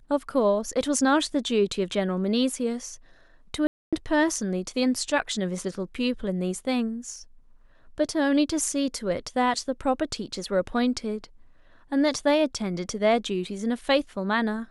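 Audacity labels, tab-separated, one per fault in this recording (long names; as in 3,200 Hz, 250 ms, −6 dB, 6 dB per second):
3.670000	3.930000	drop-out 256 ms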